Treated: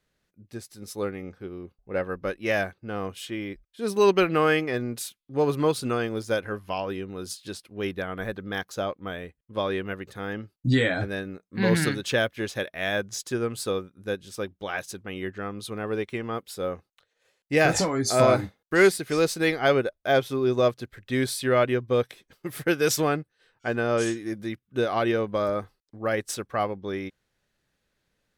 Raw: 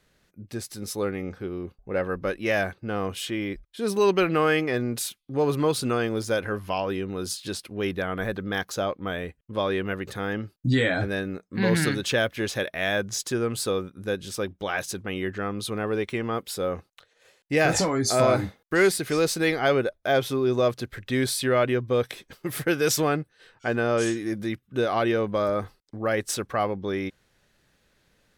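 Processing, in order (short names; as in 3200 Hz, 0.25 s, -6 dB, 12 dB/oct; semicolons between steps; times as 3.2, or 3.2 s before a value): upward expander 1.5:1, over -41 dBFS; gain +2.5 dB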